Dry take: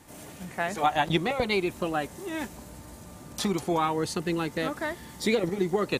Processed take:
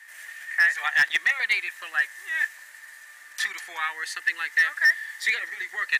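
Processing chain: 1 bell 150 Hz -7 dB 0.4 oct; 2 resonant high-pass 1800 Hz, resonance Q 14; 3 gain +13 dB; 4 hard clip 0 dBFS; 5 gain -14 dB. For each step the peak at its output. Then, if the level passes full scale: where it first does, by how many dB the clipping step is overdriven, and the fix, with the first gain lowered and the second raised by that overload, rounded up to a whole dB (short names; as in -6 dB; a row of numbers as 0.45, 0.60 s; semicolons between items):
-11.0, -5.5, +7.5, 0.0, -14.0 dBFS; step 3, 7.5 dB; step 3 +5 dB, step 5 -6 dB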